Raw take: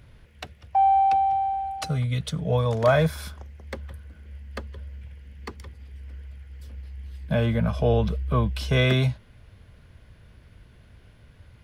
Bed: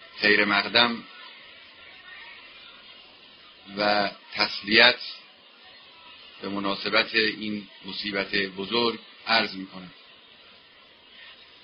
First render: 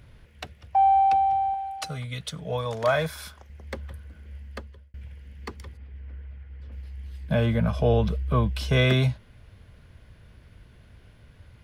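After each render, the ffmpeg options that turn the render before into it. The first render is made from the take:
-filter_complex "[0:a]asettb=1/sr,asplit=3[a][b][c];[a]atrim=end=1.544[d];[b]atrim=start=1.54:end=3.5,asetpts=PTS-STARTPTS,afade=t=in:d=0.004:c=qsin,afade=t=out:st=1.956:d=0.004:c=qsin,lowshelf=f=460:g=-10[e];[c]atrim=start=3.496[f];[d][e]acrossfade=d=0.004:c1=hsin:c2=qsin[g];[g][f]acrossfade=d=0.004:c1=qsin:c2=hsin,asettb=1/sr,asplit=3[h][i][j];[h]atrim=end=5.774[k];[i]atrim=start=5.77:end=6.72,asetpts=PTS-STARTPTS,afade=t=in:d=0.004:c=qsin,afade=t=out:st=0.946:d=0.004:c=qsin,lowpass=2.4k[l];[j]atrim=start=6.716[m];[k][l]acrossfade=d=0.004:c1=hsin:c2=qsin[n];[n][m]acrossfade=d=0.004:c1=qsin:c2=hsin,asplit=2[o][p];[o]atrim=end=4.94,asetpts=PTS-STARTPTS,afade=t=out:st=4.43:d=0.51[q];[p]atrim=start=4.94,asetpts=PTS-STARTPTS,afade=t=in:d=0.004:c=hsin[r];[q][r]concat=n=2:v=0:a=1"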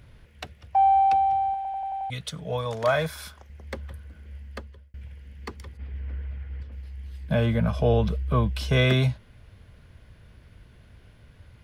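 -filter_complex "[0:a]asettb=1/sr,asplit=3[a][b][c];[a]atrim=end=5.794[d];[b]atrim=start=5.79:end=6.63,asetpts=PTS-STARTPTS,afade=t=in:d=0.004:c=qsin,afade=t=out:st=0.836:d=0.004:c=qsin,acontrast=67[e];[c]atrim=start=6.626[f];[d][e]acrossfade=d=0.004:c1=hsin:c2=qsin[g];[g][f]acrossfade=d=0.004:c1=qsin:c2=hsin,asplit=7[h][i][j][k][l][m][n];[h]atrim=end=1.652[o];[i]atrim=start=1.558:end=1.652[p];[j]atrim=start=1.558:end=1.652[q];[k]atrim=start=1.558:end=1.652[r];[l]atrim=start=1.558:end=1.652[s];[m]atrim=start=1.558:end=1.652[t];[n]atrim=start=2.098[u];[o][p]acrossfade=d=0.004:c1=hsin:c2=hsin[v];[v][q]acrossfade=d=0.004:c1=hsin:c2=hsin[w];[w][r]acrossfade=d=0.004:c1=hsin:c2=hsin[x];[x][s]acrossfade=d=0.004:c1=hsin:c2=hsin[y];[y][t]acrossfade=d=0.004:c1=hsin:c2=hsin[z];[z][u]acrossfade=d=0.004:c1=hsin:c2=hsin"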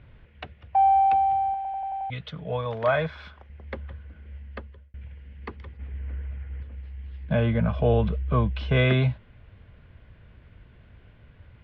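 -af "lowpass=f=3.2k:w=0.5412,lowpass=f=3.2k:w=1.3066"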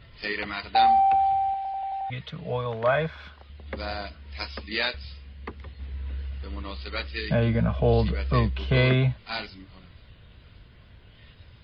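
-filter_complex "[1:a]volume=-11dB[a];[0:a][a]amix=inputs=2:normalize=0"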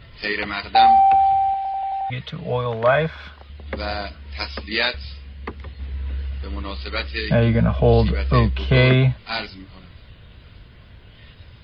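-af "volume=6dB"

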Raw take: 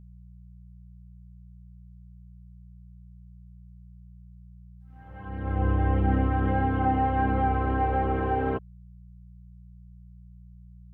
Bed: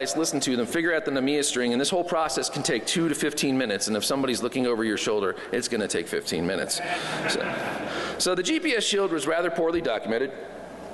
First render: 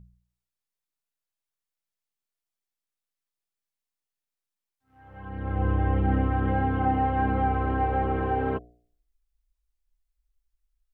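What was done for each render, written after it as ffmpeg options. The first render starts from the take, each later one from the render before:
-af "bandreject=f=60:t=h:w=4,bandreject=f=120:t=h:w=4,bandreject=f=180:t=h:w=4,bandreject=f=240:t=h:w=4,bandreject=f=300:t=h:w=4,bandreject=f=360:t=h:w=4,bandreject=f=420:t=h:w=4,bandreject=f=480:t=h:w=4,bandreject=f=540:t=h:w=4,bandreject=f=600:t=h:w=4,bandreject=f=660:t=h:w=4,bandreject=f=720:t=h:w=4"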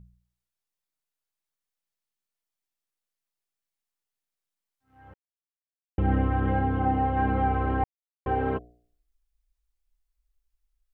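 -filter_complex "[0:a]asettb=1/sr,asplit=3[a][b][c];[a]atrim=end=6.594[d];[b]atrim=start=6.59:end=7.17,asetpts=PTS-STARTPTS,afade=t=in:d=0.004:c=qsin,afade=t=out:st=0.576:d=0.004:c=qsin,equalizer=f=2.1k:w=0.62:g=-3[e];[c]atrim=start=7.166[f];[d][e]acrossfade=d=0.004:c1=hsin:c2=qsin[g];[g][f]acrossfade=d=0.004:c1=qsin:c2=hsin,asplit=5[h][i][j][k][l];[h]atrim=end=5.14,asetpts=PTS-STARTPTS,afade=t=out:st=5.136:d=0.004:c=hsin[m];[i]atrim=start=5.14:end=5.98,asetpts=PTS-STARTPTS,volume=0[n];[j]atrim=start=5.98:end=7.84,asetpts=PTS-STARTPTS,afade=t=in:d=0.004:c=hsin,afade=t=out:st=1.856:d=0.004:c=hsin[o];[k]atrim=start=7.84:end=8.26,asetpts=PTS-STARTPTS,volume=0[p];[l]atrim=start=8.26,asetpts=PTS-STARTPTS,afade=t=in:d=0.004:c=hsin[q];[m][n][o][p][q]concat=n=5:v=0:a=1"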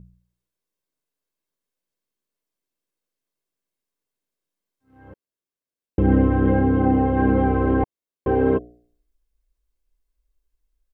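-af "equalizer=f=280:t=o:w=1.7:g=15,aecho=1:1:1.9:0.36"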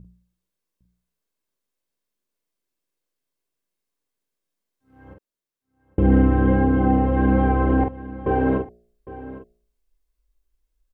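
-filter_complex "[0:a]asplit=2[a][b];[b]adelay=45,volume=-5.5dB[c];[a][c]amix=inputs=2:normalize=0,aecho=1:1:807:0.15"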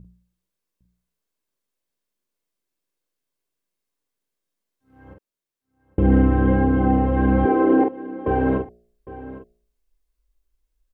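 -filter_complex "[0:a]asettb=1/sr,asplit=3[a][b][c];[a]atrim=end=7.454[d];[b]atrim=start=7.45:end=8.27,asetpts=PTS-STARTPTS,afade=t=in:d=0.004:c=qsin,afade=t=out:st=0.816:d=0.004:c=qsin,highpass=f=340:t=q:w=3[e];[c]atrim=start=8.266[f];[d][e]acrossfade=d=0.004:c1=hsin:c2=qsin[g];[g][f]acrossfade=d=0.004:c1=qsin:c2=hsin"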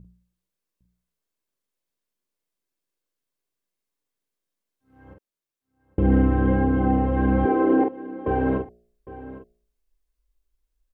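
-af "volume=-2.5dB"

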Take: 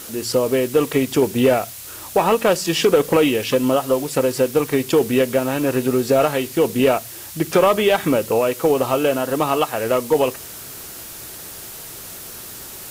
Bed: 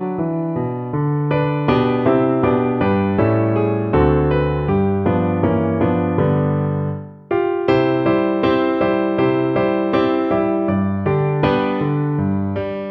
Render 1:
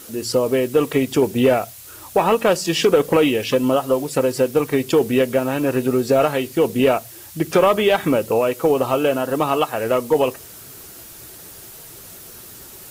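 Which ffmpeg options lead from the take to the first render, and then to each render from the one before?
-af "afftdn=nr=6:nf=-36"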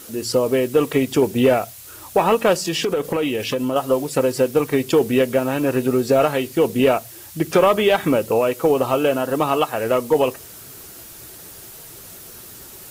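-filter_complex "[0:a]asettb=1/sr,asplit=3[a][b][c];[a]atrim=end=2.654[d];[b]atrim=start=2.65:end=3.76,asetpts=PTS-STARTPTS,afade=t=in:d=0.004:c=qsin,afade=t=out:st=1.106:d=0.004:c=qsin,acompressor=threshold=-19dB:ratio=3:attack=3.2:release=140:knee=1:detection=peak[e];[c]atrim=start=3.756[f];[d][e]acrossfade=d=0.004:c1=hsin:c2=qsin[g];[g][f]acrossfade=d=0.004:c1=qsin:c2=hsin"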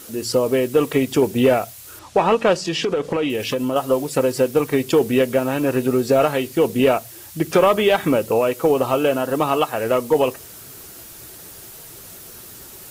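-filter_complex "[0:a]asettb=1/sr,asplit=3[a][b][c];[a]atrim=end=1.994[d];[b]atrim=start=1.99:end=3.3,asetpts=PTS-STARTPTS,afade=t=in:d=0.004:c=qsin,afade=t=out:st=1.306:d=0.004:c=qsin,lowpass=6.1k[e];[c]atrim=start=3.296[f];[d][e]acrossfade=d=0.004:c1=hsin:c2=qsin[g];[g][f]acrossfade=d=0.004:c1=qsin:c2=hsin"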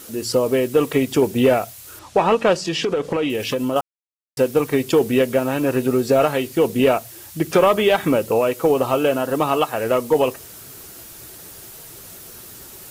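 -filter_complex "[0:a]asplit=3[a][b][c];[a]atrim=end=3.81,asetpts=PTS-STARTPTS,afade=t=out:st=3.806:d=0.004:c=hsin[d];[b]atrim=start=3.81:end=4.37,asetpts=PTS-STARTPTS,volume=0[e];[c]atrim=start=4.37,asetpts=PTS-STARTPTS,afade=t=in:d=0.004:c=hsin[f];[d][e][f]concat=n=3:v=0:a=1"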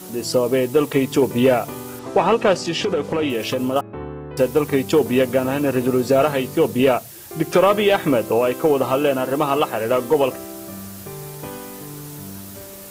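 -filter_complex "[1:a]volume=-17.5dB[a];[0:a][a]amix=inputs=2:normalize=0"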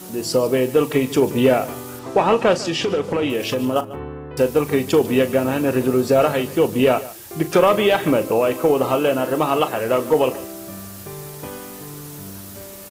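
-filter_complex "[0:a]asplit=2[a][b];[b]adelay=39,volume=-13.5dB[c];[a][c]amix=inputs=2:normalize=0,aecho=1:1:147:0.133"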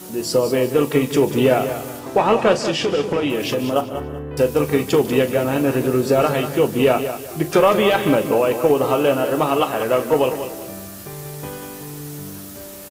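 -filter_complex "[0:a]asplit=2[a][b];[b]adelay=14,volume=-11dB[c];[a][c]amix=inputs=2:normalize=0,aecho=1:1:191|382|573:0.316|0.0917|0.0266"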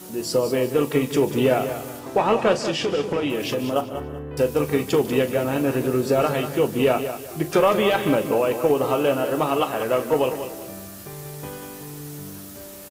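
-af "volume=-3.5dB"

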